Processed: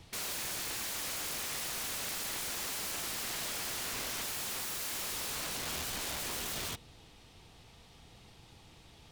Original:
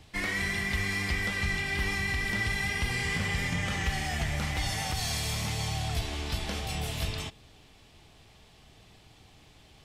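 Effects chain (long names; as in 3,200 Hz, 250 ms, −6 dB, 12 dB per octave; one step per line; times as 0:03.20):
wrap-around overflow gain 32 dB
speed change +8%
level −1 dB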